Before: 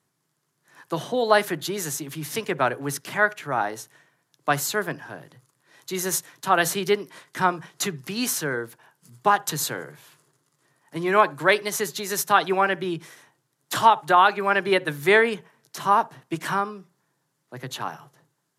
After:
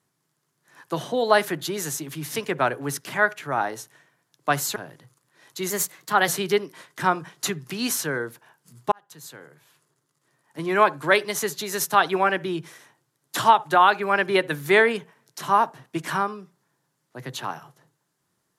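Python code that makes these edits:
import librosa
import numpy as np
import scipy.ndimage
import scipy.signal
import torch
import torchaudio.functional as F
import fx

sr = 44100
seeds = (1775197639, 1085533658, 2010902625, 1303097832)

y = fx.edit(x, sr, fx.cut(start_s=4.76, length_s=0.32),
    fx.speed_span(start_s=6.02, length_s=0.63, speed=1.09),
    fx.fade_in_span(start_s=9.29, length_s=1.94), tone=tone)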